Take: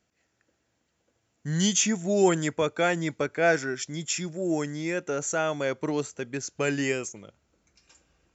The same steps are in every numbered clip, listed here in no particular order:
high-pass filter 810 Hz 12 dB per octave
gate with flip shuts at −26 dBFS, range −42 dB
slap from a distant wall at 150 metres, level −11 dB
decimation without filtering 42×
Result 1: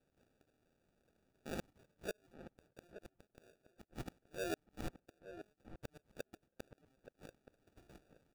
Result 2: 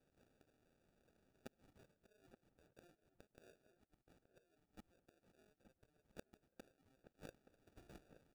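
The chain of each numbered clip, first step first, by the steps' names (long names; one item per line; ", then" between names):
high-pass filter, then gate with flip, then decimation without filtering, then slap from a distant wall
gate with flip, then high-pass filter, then decimation without filtering, then slap from a distant wall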